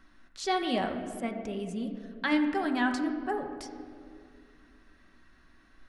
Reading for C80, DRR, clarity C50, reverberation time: 8.5 dB, 3.0 dB, 7.0 dB, 2.2 s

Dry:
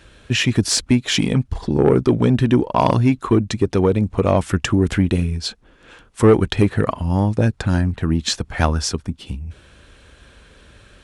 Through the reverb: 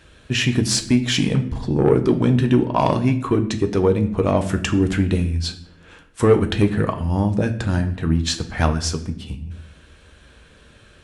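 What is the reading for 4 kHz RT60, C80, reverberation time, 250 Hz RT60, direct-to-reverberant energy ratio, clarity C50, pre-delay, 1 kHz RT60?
0.55 s, 15.5 dB, 0.70 s, 1.1 s, 6.0 dB, 13.0 dB, 6 ms, 0.60 s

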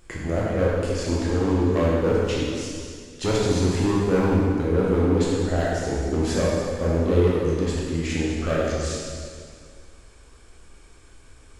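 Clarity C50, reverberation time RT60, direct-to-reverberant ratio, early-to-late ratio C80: −2.5 dB, 2.1 s, −6.0 dB, −0.5 dB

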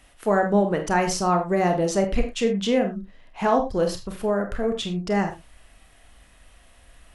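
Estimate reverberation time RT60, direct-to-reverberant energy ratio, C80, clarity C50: non-exponential decay, 4.5 dB, 15.0 dB, 10.5 dB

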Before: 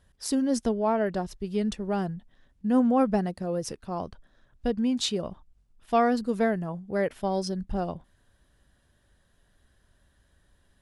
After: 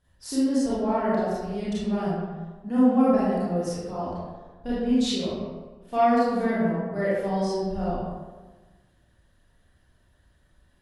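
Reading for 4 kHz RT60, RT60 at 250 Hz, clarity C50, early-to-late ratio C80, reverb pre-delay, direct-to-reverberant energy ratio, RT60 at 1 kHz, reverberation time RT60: 0.70 s, 1.4 s, −4.0 dB, 0.5 dB, 27 ms, −10.0 dB, 1.3 s, 1.3 s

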